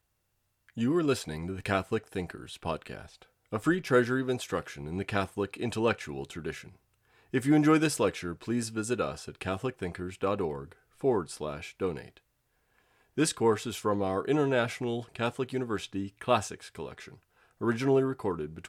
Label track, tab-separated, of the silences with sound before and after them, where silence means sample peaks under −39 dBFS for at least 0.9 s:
12.170000	13.170000	silence